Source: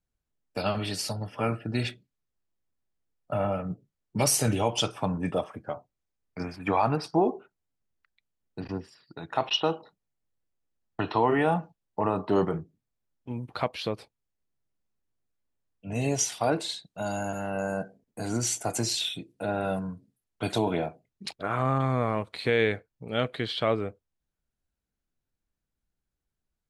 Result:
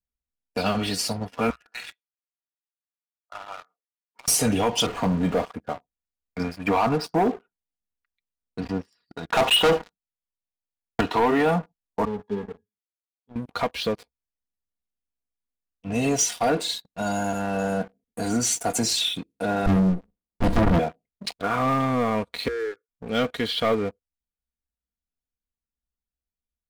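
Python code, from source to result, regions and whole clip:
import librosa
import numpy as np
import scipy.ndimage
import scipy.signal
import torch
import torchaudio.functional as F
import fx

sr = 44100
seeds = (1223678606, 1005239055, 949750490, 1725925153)

y = fx.chain(x, sr, fx.highpass(hz=1100.0, slope=24),
    fx.tilt_eq(slope=-3.5),
    fx.over_compress(threshold_db=-41.0, ratio=-0.5), at=(1.5, 4.28))
y = fx.chain(y, sr, fx.zero_step(step_db=-35.0),
    fx.resample_linear(factor=8), at=(4.86, 5.45))
y = fx.chain(y, sr, fx.lowpass(hz=3900.0, slope=24),
    fx.leveller(passes=3), at=(9.27, 11.01))
y = fx.chain(y, sr, fx.law_mismatch(coded='A'),
    fx.highpass(hz=160.0, slope=6),
    fx.octave_resonator(note='G#', decay_s=0.12), at=(12.05, 13.36))
y = fx.chain(y, sr, fx.peak_eq(hz=330.0, db=13.0, octaves=2.7),
    fx.comb(ms=5.8, depth=0.52),
    fx.running_max(window=65), at=(19.66, 20.79))
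y = fx.chain(y, sr, fx.double_bandpass(hz=700.0, octaves=1.8),
    fx.fixed_phaser(hz=820.0, stages=6), at=(22.48, 22.89))
y = fx.peak_eq(y, sr, hz=63.0, db=10.0, octaves=0.43)
y = y + 0.52 * np.pad(y, (int(4.2 * sr / 1000.0), 0))[:len(y)]
y = fx.leveller(y, sr, passes=3)
y = F.gain(torch.from_numpy(y), -6.5).numpy()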